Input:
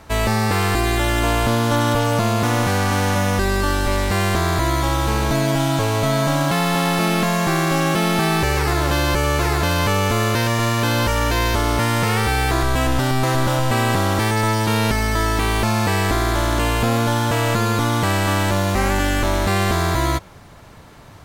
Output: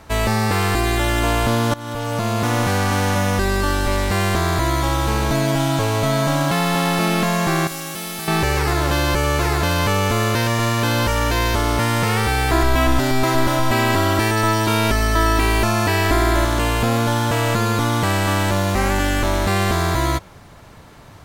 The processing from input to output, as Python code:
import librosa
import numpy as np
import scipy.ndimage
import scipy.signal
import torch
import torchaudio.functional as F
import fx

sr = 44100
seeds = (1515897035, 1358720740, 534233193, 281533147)

y = fx.pre_emphasis(x, sr, coefficient=0.8, at=(7.67, 8.28))
y = fx.comb(y, sr, ms=3.0, depth=0.64, at=(12.51, 16.45))
y = fx.edit(y, sr, fx.fade_in_from(start_s=1.74, length_s=1.03, curve='qsin', floor_db=-20.0), tone=tone)